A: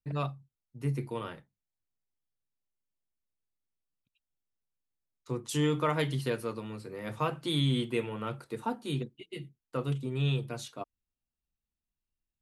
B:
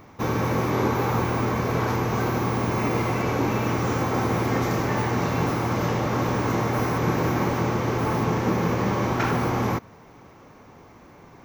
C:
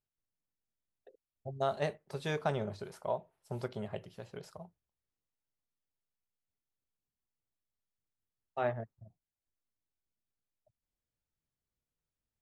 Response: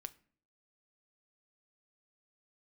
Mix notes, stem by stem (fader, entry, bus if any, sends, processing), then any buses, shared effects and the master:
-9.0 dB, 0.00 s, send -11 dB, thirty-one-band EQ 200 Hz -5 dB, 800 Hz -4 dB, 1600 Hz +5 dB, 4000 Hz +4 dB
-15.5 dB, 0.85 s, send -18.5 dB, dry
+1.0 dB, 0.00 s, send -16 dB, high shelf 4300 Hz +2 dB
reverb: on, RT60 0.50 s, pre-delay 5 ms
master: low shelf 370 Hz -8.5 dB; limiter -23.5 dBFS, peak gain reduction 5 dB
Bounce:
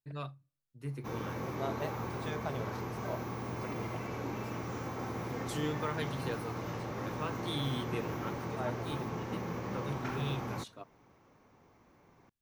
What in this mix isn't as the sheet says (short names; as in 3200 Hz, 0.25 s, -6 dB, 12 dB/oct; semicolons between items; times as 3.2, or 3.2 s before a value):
stem C +1.0 dB -> -7.0 dB; master: missing low shelf 370 Hz -8.5 dB